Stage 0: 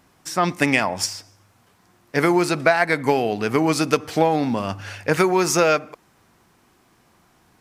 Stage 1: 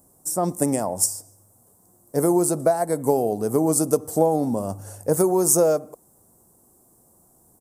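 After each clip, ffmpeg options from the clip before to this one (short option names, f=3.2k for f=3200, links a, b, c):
-af "firequalizer=gain_entry='entry(290,0);entry(540,3);entry(1500,-17);entry(2400,-28);entry(8200,13)':delay=0.05:min_phase=1,volume=-1.5dB"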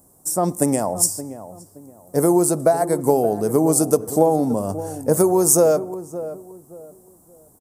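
-filter_complex "[0:a]asplit=2[a][b];[b]adelay=572,lowpass=f=1k:p=1,volume=-12.5dB,asplit=2[c][d];[d]adelay=572,lowpass=f=1k:p=1,volume=0.31,asplit=2[e][f];[f]adelay=572,lowpass=f=1k:p=1,volume=0.31[g];[a][c][e][g]amix=inputs=4:normalize=0,volume=3dB"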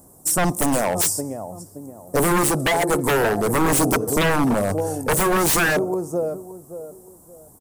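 -af "aeval=exprs='0.133*(abs(mod(val(0)/0.133+3,4)-2)-1)':c=same,aphaser=in_gain=1:out_gain=1:delay=2.3:decay=0.21:speed=0.5:type=sinusoidal,volume=4dB"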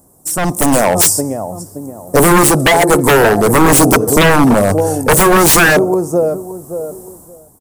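-af "dynaudnorm=f=100:g=11:m=14dB"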